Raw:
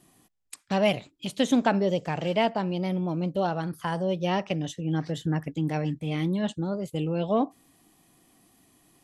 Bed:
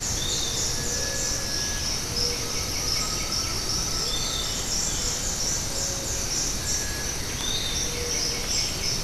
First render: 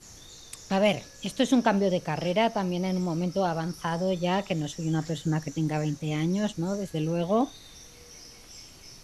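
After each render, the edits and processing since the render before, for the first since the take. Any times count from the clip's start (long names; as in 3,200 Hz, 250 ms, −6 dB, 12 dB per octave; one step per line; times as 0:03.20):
mix in bed −21.5 dB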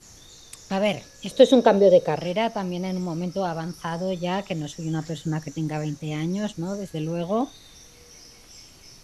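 0:01.31–0:02.16: hollow resonant body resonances 490/3,800 Hz, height 16 dB, ringing for 20 ms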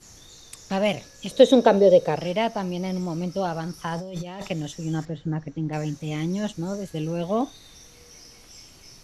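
0:03.96–0:04.48: compressor whose output falls as the input rises −34 dBFS
0:05.05–0:05.73: head-to-tape spacing loss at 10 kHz 30 dB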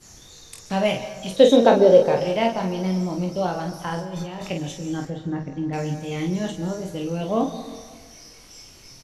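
ambience of single reflections 22 ms −6 dB, 48 ms −6.5 dB
dense smooth reverb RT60 1.5 s, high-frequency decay 0.45×, pre-delay 120 ms, DRR 11.5 dB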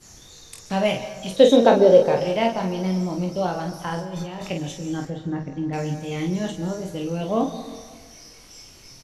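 no processing that can be heard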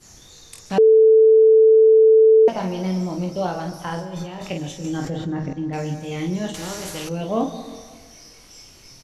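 0:00.78–0:02.48: beep over 441 Hz −8.5 dBFS
0:04.84–0:05.53: envelope flattener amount 70%
0:06.54–0:07.09: every bin compressed towards the loudest bin 2 to 1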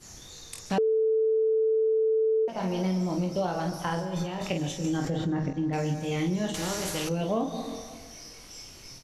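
downward compressor 6 to 1, threshold −24 dBFS, peak gain reduction 12.5 dB
every ending faded ahead of time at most 240 dB per second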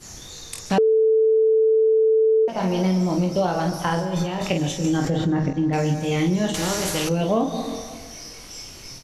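level +7 dB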